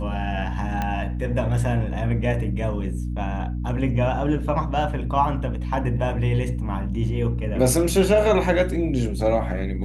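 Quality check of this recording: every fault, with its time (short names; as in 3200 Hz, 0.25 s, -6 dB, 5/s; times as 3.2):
hum 60 Hz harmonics 5 -27 dBFS
0.82 pop -13 dBFS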